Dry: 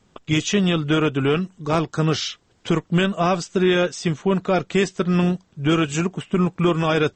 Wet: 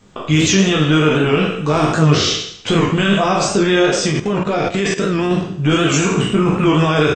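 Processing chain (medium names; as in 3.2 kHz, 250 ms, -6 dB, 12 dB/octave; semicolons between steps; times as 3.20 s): spectral sustain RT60 0.65 s; peak limiter -14.5 dBFS, peak gain reduction 8.5 dB; on a send: reverse bouncing-ball echo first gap 20 ms, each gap 1.25×, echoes 5; 4.07–5.31 s: on the sum: level held to a coarse grid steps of 12 dB; warped record 78 rpm, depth 100 cents; trim +7 dB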